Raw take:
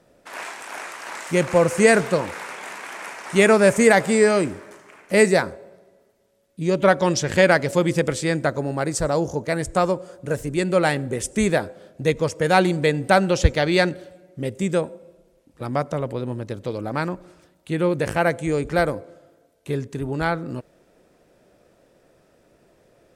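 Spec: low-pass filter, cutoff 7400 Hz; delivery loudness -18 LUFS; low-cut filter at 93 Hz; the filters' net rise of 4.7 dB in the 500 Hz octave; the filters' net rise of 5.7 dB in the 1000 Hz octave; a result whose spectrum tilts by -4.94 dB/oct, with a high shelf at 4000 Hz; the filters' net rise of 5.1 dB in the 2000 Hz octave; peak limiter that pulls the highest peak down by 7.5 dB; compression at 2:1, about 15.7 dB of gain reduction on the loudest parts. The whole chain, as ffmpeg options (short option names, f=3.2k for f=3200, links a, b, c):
-af "highpass=93,lowpass=7.4k,equalizer=f=500:t=o:g=4,equalizer=f=1k:t=o:g=5.5,equalizer=f=2k:t=o:g=5,highshelf=f=4k:g=-4,acompressor=threshold=-36dB:ratio=2,volume=14.5dB,alimiter=limit=-5dB:level=0:latency=1"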